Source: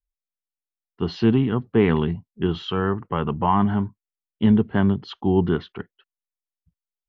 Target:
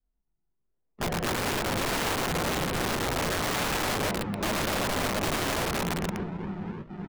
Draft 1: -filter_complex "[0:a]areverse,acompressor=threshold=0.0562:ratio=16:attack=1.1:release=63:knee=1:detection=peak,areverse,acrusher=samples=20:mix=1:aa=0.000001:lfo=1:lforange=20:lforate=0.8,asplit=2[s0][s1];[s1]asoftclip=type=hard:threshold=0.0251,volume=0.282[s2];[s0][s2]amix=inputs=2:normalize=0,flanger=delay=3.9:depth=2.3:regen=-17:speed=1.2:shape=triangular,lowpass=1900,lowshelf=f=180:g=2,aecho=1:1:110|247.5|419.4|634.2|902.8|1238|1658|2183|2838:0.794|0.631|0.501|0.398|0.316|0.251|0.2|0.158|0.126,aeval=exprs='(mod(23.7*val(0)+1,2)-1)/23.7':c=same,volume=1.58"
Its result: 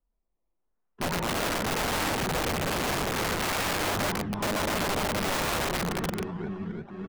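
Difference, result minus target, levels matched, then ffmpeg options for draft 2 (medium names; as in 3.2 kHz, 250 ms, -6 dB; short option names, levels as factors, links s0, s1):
decimation with a swept rate: distortion -9 dB
-filter_complex "[0:a]areverse,acompressor=threshold=0.0562:ratio=16:attack=1.1:release=63:knee=1:detection=peak,areverse,acrusher=samples=55:mix=1:aa=0.000001:lfo=1:lforange=55:lforate=0.8,asplit=2[s0][s1];[s1]asoftclip=type=hard:threshold=0.0251,volume=0.282[s2];[s0][s2]amix=inputs=2:normalize=0,flanger=delay=3.9:depth=2.3:regen=-17:speed=1.2:shape=triangular,lowpass=1900,lowshelf=f=180:g=2,aecho=1:1:110|247.5|419.4|634.2|902.8|1238|1658|2183|2838:0.794|0.631|0.501|0.398|0.316|0.251|0.2|0.158|0.126,aeval=exprs='(mod(23.7*val(0)+1,2)-1)/23.7':c=same,volume=1.58"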